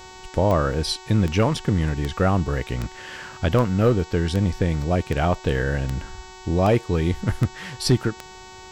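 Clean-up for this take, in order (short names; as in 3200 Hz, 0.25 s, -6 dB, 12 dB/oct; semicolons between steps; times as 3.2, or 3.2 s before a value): clip repair -10 dBFS; de-click; de-hum 373.5 Hz, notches 21; notch 900 Hz, Q 30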